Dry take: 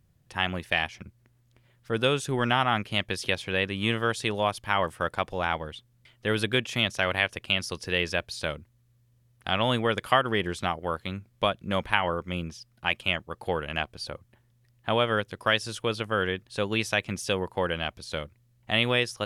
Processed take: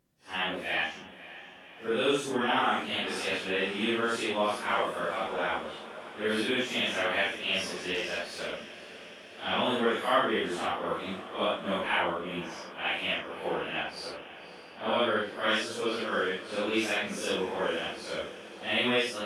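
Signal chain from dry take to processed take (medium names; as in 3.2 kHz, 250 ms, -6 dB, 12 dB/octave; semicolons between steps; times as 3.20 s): phase randomisation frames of 200 ms; 7.94–8.53 s: valve stage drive 23 dB, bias 0.55; resonant low shelf 170 Hz -12.5 dB, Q 1.5; echo that smears into a reverb 558 ms, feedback 70%, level -15.5 dB; trim -2.5 dB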